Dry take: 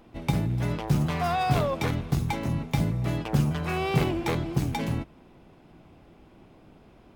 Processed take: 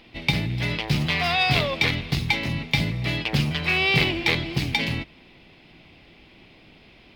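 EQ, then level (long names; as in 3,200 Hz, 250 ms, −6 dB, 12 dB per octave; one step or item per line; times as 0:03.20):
flat-topped bell 3,100 Hz +15 dB
0.0 dB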